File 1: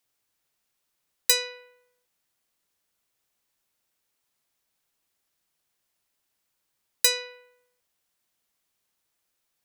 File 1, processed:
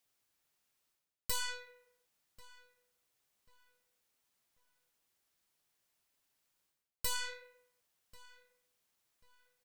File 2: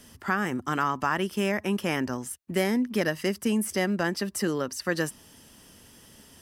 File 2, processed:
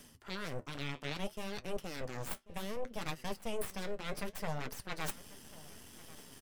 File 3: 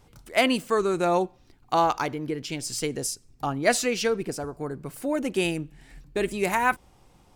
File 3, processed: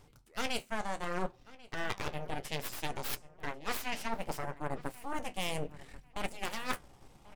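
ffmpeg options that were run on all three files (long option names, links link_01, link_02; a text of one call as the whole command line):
ffmpeg -i in.wav -filter_complex "[0:a]areverse,acompressor=threshold=-38dB:ratio=6,areverse,aeval=exprs='0.0668*(cos(1*acos(clip(val(0)/0.0668,-1,1)))-cos(1*PI/2))+0.00944*(cos(3*acos(clip(val(0)/0.0668,-1,1)))-cos(3*PI/2))+0.0188*(cos(4*acos(clip(val(0)/0.0668,-1,1)))-cos(4*PI/2))+0.0106*(cos(7*acos(clip(val(0)/0.0668,-1,1)))-cos(7*PI/2))+0.00531*(cos(8*acos(clip(val(0)/0.0668,-1,1)))-cos(8*PI/2))':channel_layout=same,flanger=delay=6.8:depth=7.9:regen=-56:speed=0.64:shape=sinusoidal,asplit=2[link_01][link_02];[link_02]adelay=1090,lowpass=frequency=3100:poles=1,volume=-19dB,asplit=2[link_03][link_04];[link_04]adelay=1090,lowpass=frequency=3100:poles=1,volume=0.3,asplit=2[link_05][link_06];[link_06]adelay=1090,lowpass=frequency=3100:poles=1,volume=0.3[link_07];[link_01][link_03][link_05][link_07]amix=inputs=4:normalize=0,volume=7dB" out.wav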